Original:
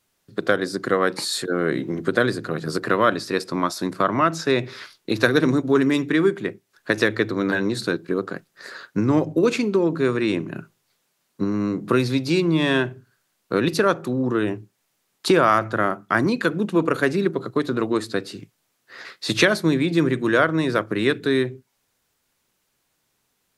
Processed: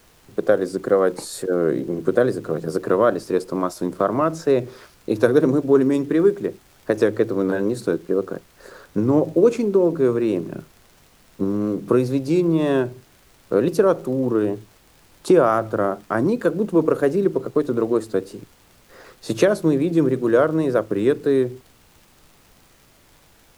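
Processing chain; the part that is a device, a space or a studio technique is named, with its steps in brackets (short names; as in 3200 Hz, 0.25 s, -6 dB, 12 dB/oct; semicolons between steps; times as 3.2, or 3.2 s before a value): ten-band EQ 500 Hz +7 dB, 2000 Hz -9 dB, 4000 Hz -10 dB; vinyl LP (wow and flutter 47 cents; crackle; pink noise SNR 33 dB); gain -1 dB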